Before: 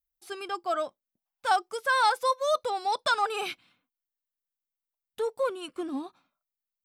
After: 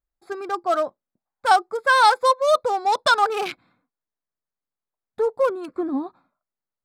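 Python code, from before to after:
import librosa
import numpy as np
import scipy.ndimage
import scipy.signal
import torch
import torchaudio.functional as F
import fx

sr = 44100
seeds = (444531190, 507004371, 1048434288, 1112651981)

y = fx.wiener(x, sr, points=15)
y = y * 10.0 ** (8.5 / 20.0)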